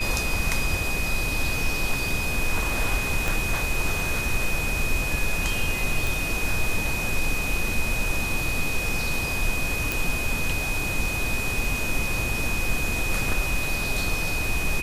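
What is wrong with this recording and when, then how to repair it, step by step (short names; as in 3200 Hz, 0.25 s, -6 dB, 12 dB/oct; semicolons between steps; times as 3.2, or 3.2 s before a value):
tone 2500 Hz -28 dBFS
3.28 pop
6.07 pop
9.92 pop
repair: de-click; notch 2500 Hz, Q 30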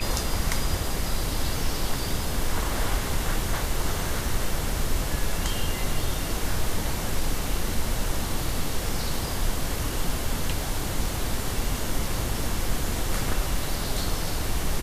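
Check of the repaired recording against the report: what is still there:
3.28 pop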